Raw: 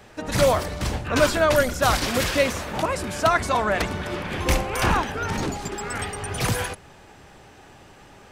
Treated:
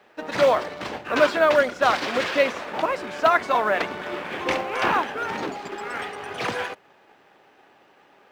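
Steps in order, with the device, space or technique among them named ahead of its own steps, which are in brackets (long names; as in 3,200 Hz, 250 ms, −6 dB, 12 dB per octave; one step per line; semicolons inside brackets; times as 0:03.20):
phone line with mismatched companding (band-pass filter 320–3,300 Hz; mu-law and A-law mismatch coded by A)
level +2 dB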